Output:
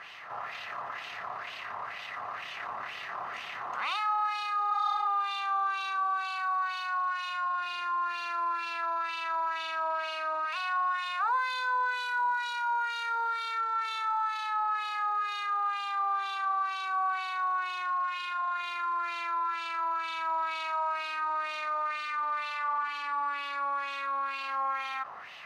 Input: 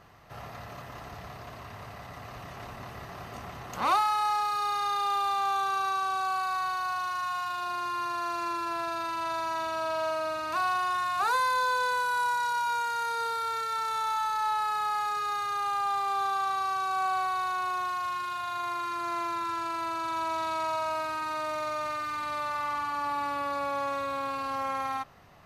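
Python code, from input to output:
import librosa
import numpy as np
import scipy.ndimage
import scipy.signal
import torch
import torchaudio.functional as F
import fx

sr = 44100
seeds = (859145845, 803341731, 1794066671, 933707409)

y = fx.filter_lfo_bandpass(x, sr, shape='sine', hz=2.1, low_hz=1000.0, high_hz=3000.0, q=2.6)
y = fx.spec_repair(y, sr, seeds[0], start_s=4.73, length_s=0.32, low_hz=490.0, high_hz=3100.0, source='before')
y = fx.cheby2_highpass(y, sr, hz=190.0, order=4, stop_db=40, at=(10.45, 11.39))
y = fx.peak_eq(y, sr, hz=670.0, db=-9.5, octaves=0.46, at=(22.89, 24.41))
y = fx.env_flatten(y, sr, amount_pct=50)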